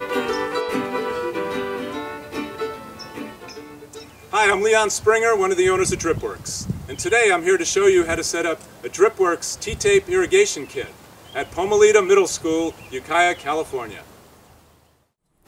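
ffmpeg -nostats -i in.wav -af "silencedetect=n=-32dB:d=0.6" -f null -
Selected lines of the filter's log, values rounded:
silence_start: 14.01
silence_end: 15.48 | silence_duration: 1.47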